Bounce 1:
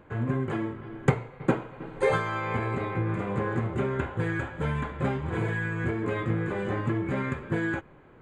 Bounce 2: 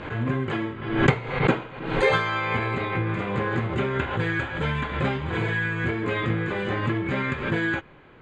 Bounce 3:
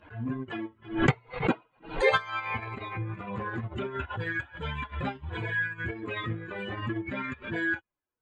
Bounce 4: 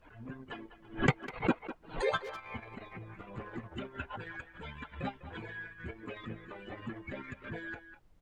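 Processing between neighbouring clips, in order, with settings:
low-pass filter 5,900 Hz 12 dB per octave; parametric band 3,600 Hz +10.5 dB 2 octaves; background raised ahead of every attack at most 71 dB per second; level +1.5 dB
spectral dynamics exaggerated over time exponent 2; transient designer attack −5 dB, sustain −9 dB; level +2 dB
far-end echo of a speakerphone 200 ms, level −11 dB; harmonic and percussive parts rebalanced harmonic −13 dB; background noise brown −61 dBFS; level −2 dB

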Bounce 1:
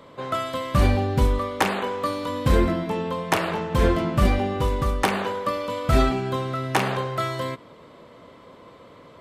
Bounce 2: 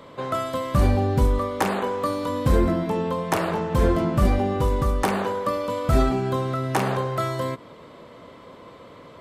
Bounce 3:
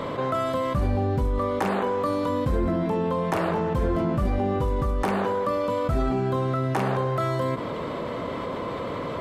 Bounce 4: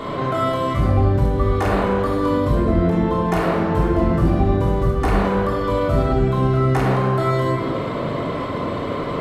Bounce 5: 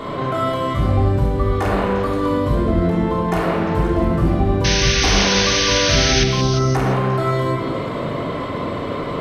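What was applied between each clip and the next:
dynamic equaliser 2,800 Hz, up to −7 dB, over −41 dBFS, Q 0.77; in parallel at −2 dB: brickwall limiter −17.5 dBFS, peak gain reduction 10 dB; on the sum: level −2.5 dB
high-shelf EQ 3,400 Hz −8.5 dB; envelope flattener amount 70%; level −7 dB
rectangular room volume 1,800 cubic metres, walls mixed, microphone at 3.3 metres
sound drawn into the spectrogram noise, 0:04.64–0:06.24, 1,400–6,400 Hz −20 dBFS; echo through a band-pass that steps 176 ms, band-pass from 2,600 Hz, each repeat 0.7 octaves, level −5 dB

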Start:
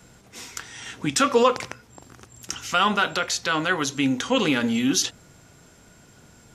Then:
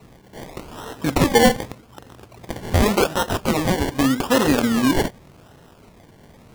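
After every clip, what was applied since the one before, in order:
sample-and-hold swept by an LFO 27×, swing 60% 0.85 Hz
level +4 dB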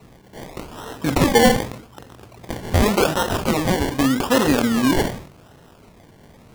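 level that may fall only so fast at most 100 dB per second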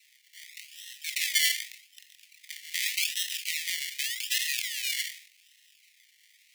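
Butterworth high-pass 1,900 Hz 96 dB per octave
level −1.5 dB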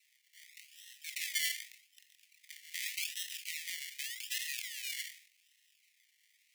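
parametric band 3,900 Hz −2.5 dB 0.92 octaves
level −8.5 dB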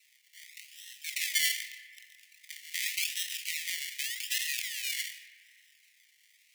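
convolution reverb RT60 3.9 s, pre-delay 40 ms, DRR 11.5 dB
level +6 dB

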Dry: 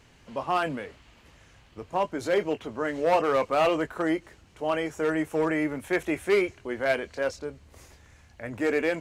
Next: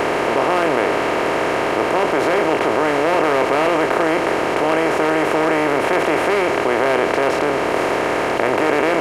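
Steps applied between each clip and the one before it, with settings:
compressor on every frequency bin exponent 0.2
envelope flattener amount 50%
level −1 dB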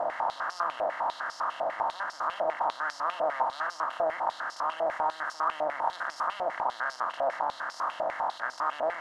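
phaser with its sweep stopped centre 1,000 Hz, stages 4
band-pass on a step sequencer 10 Hz 650–5,100 Hz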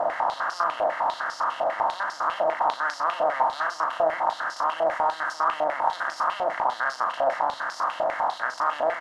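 double-tracking delay 37 ms −10 dB
level +5 dB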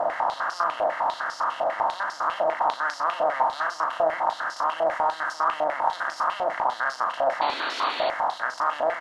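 sound drawn into the spectrogram noise, 0:07.41–0:08.10, 240–4,600 Hz −33 dBFS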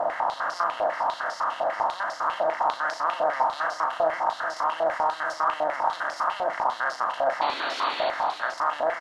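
single-tap delay 435 ms −12 dB
level −1 dB

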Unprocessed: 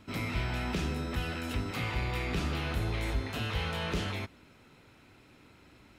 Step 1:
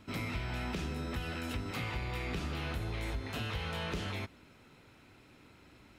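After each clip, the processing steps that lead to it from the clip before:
downward compressor, threshold −32 dBFS, peak gain reduction 6.5 dB
level −1 dB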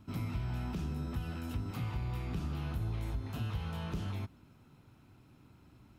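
octave-band graphic EQ 125/500/2,000/4,000/8,000 Hz +5/−8/−11/−6/−6 dB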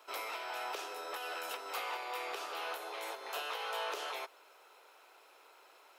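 Butterworth high-pass 440 Hz 48 dB per octave
level +9.5 dB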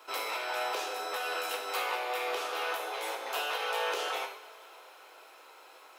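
coupled-rooms reverb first 0.55 s, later 4.4 s, from −22 dB, DRR 2 dB
level +4.5 dB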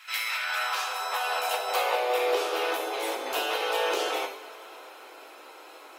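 dynamic equaliser 1,400 Hz, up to −4 dB, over −46 dBFS, Q 0.98
high-pass filter sweep 2,000 Hz → 270 Hz, 0:00.08–0:02.96
level +4.5 dB
AAC 48 kbit/s 44,100 Hz

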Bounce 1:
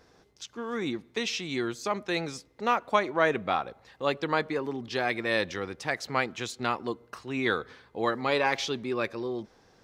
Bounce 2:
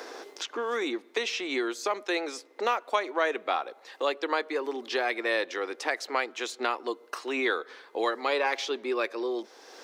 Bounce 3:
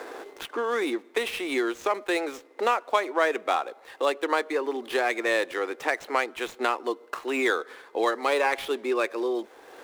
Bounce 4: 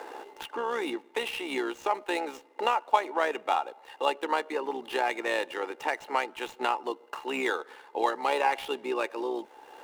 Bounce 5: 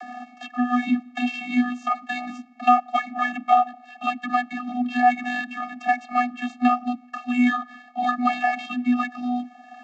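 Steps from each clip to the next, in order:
inverse Chebyshev high-pass filter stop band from 160 Hz, stop band 40 dB; multiband upward and downward compressor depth 70%
running median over 9 samples; level +3.5 dB
hollow resonant body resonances 870/2,800 Hz, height 16 dB, ringing for 60 ms; amplitude modulation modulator 66 Hz, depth 30%; level −3 dB
channel vocoder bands 32, square 246 Hz; level +8 dB

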